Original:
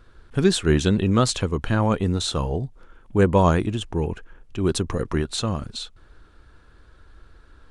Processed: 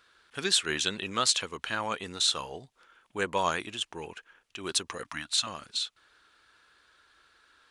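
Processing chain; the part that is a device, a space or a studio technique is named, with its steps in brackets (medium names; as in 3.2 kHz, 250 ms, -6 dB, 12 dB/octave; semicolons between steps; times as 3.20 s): filter by subtraction (in parallel: low-pass 2.9 kHz 12 dB/octave + polarity flip); 5.03–5.47 s: on the sum: elliptic band-stop 300–630 Hz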